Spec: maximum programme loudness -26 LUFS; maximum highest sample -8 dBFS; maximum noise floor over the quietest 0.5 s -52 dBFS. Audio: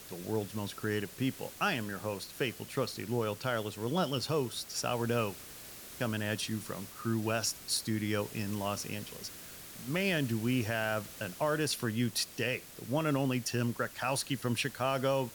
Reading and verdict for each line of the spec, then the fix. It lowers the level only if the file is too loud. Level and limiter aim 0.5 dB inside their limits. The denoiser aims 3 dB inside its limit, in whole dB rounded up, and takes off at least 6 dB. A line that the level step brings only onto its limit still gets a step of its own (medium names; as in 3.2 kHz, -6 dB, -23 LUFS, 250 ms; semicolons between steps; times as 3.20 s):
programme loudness -34.0 LUFS: pass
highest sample -19.0 dBFS: pass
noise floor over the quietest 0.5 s -48 dBFS: fail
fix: noise reduction 7 dB, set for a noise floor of -48 dBFS